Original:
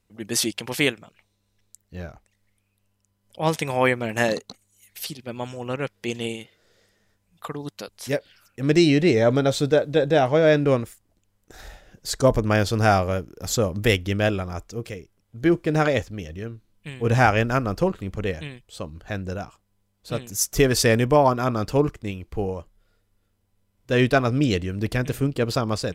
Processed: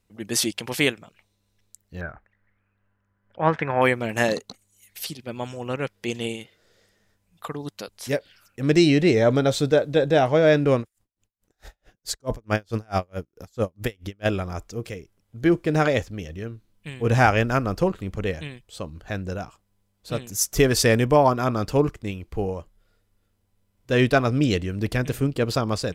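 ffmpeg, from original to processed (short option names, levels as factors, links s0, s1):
-filter_complex "[0:a]asettb=1/sr,asplit=3[s0][s1][s2];[s0]atrim=end=2.014[s3];[s1]atrim=start=2.01:end=3.82,asetpts=PTS-STARTPTS,afade=t=in:d=0.004:c=qsin,afade=t=out:st=1.806:d=0.004:c=qsin,lowpass=f=1600:t=q:w=3.8[s4];[s2]atrim=start=3.816[s5];[s3][s4]acrossfade=d=0.004:c1=hsin:c2=qsin[s6];[s6][s5]acrossfade=d=0.004:c1=qsin:c2=hsin,asettb=1/sr,asplit=3[s7][s8][s9];[s7]atrim=end=10.804[s10];[s8]atrim=start=10.8:end=14.26,asetpts=PTS-STARTPTS,afade=t=in:d=0.004:c=qsin,afade=t=out:st=3.456:d=0.004:c=qsin,aeval=exprs='val(0)*pow(10,-39*(0.5-0.5*cos(2*PI*4.6*n/s))/20)':c=same[s11];[s9]atrim=start=14.256[s12];[s10][s11]acrossfade=d=0.004:c1=hsin:c2=qsin[s13];[s13][s12]acrossfade=d=0.004:c1=qsin:c2=hsin"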